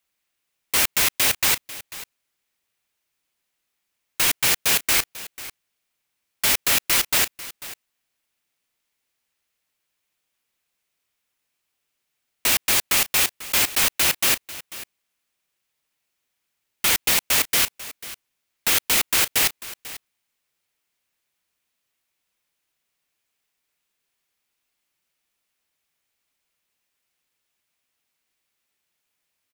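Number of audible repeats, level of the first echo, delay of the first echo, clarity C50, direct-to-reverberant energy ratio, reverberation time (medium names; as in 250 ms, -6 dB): 1, -16.5 dB, 493 ms, no reverb, no reverb, no reverb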